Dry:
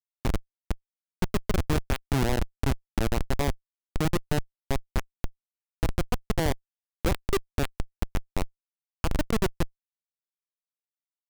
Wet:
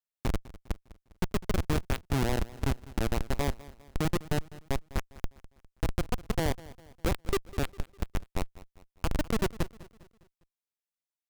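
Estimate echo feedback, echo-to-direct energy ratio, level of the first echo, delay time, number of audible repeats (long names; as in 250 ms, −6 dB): 45%, −18.0 dB, −19.0 dB, 202 ms, 3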